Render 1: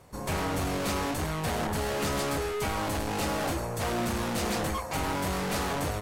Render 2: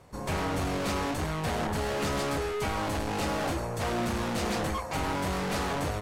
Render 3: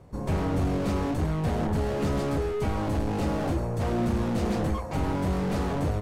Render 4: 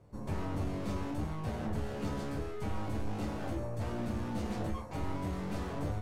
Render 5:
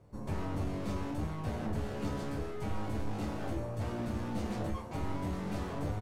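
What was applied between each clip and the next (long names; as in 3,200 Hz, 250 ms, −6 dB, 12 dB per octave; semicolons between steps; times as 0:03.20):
high-shelf EQ 9,700 Hz −9.5 dB
tilt shelving filter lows +7 dB, about 670 Hz
resonators tuned to a chord D2 sus4, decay 0.25 s; level +1.5 dB
single-tap delay 948 ms −13 dB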